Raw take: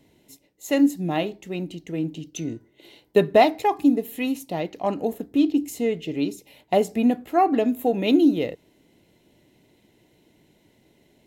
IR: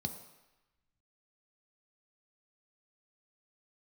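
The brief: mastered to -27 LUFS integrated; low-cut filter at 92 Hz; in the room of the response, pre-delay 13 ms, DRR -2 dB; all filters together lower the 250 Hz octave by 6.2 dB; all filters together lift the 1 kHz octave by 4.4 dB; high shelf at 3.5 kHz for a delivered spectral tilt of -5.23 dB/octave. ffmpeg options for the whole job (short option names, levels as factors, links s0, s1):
-filter_complex "[0:a]highpass=92,equalizer=f=250:t=o:g=-8,equalizer=f=1000:t=o:g=7.5,highshelf=f=3500:g=3,asplit=2[s0][s1];[1:a]atrim=start_sample=2205,adelay=13[s2];[s1][s2]afir=irnorm=-1:irlink=0,volume=1.26[s3];[s0][s3]amix=inputs=2:normalize=0,volume=0.299"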